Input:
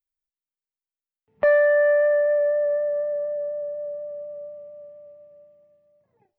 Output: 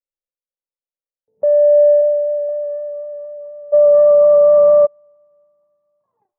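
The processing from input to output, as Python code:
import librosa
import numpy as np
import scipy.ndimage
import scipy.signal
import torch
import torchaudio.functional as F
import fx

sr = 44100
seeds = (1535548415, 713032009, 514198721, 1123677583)

y = 10.0 ** (-12.5 / 20.0) * np.tanh(x / 10.0 ** (-12.5 / 20.0))
y = fx.high_shelf(y, sr, hz=2100.0, db=-12.0, at=(2.01, 2.49))
y = fx.filter_sweep_lowpass(y, sr, from_hz=530.0, to_hz=1100.0, start_s=1.4, end_s=4.02, q=7.9)
y = fx.peak_eq(y, sr, hz=77.0, db=-7.5, octaves=2.7)
y = fx.env_flatten(y, sr, amount_pct=100, at=(3.72, 4.85), fade=0.02)
y = y * 10.0 ** (-7.0 / 20.0)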